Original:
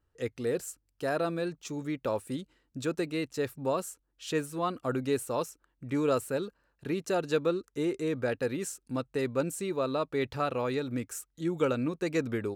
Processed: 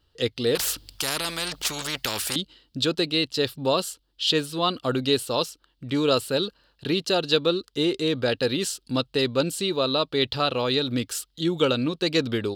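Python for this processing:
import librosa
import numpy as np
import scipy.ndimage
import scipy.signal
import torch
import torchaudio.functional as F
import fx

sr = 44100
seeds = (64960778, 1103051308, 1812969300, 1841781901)

p1 = fx.band_shelf(x, sr, hz=3800.0, db=15.0, octaves=1.0)
p2 = fx.rider(p1, sr, range_db=4, speed_s=0.5)
p3 = p1 + (p2 * 10.0 ** (0.0 / 20.0))
y = fx.spectral_comp(p3, sr, ratio=4.0, at=(0.55, 2.36))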